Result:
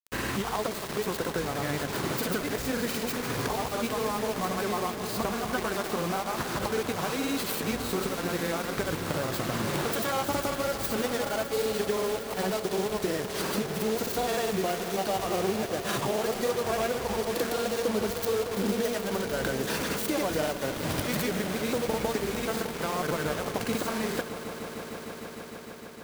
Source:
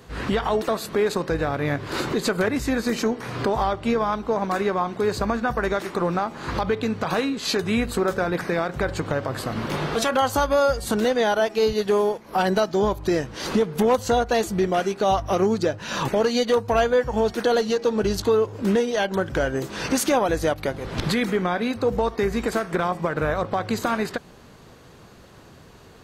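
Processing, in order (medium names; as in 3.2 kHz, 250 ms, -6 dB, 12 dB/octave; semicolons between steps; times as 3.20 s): tracing distortion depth 0.34 ms; high-pass 70 Hz 12 dB/octave; treble shelf 12 kHz +9.5 dB; de-hum 232.2 Hz, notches 5; compression 5:1, threshold -26 dBFS, peak gain reduction 10.5 dB; granulator, pitch spread up and down by 0 st; word length cut 6-bit, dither none; on a send: echo with a slow build-up 152 ms, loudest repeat 5, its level -15.5 dB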